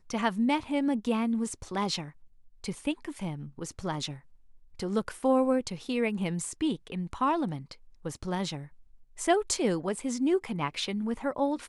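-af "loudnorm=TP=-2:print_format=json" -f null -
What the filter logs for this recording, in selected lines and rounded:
"input_i" : "-30.3",
"input_tp" : "-13.5",
"input_lra" : "3.6",
"input_thresh" : "-40.8",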